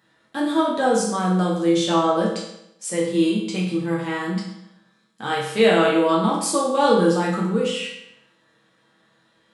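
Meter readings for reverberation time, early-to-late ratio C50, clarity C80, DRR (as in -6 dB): 0.80 s, 3.0 dB, 6.0 dB, -5.5 dB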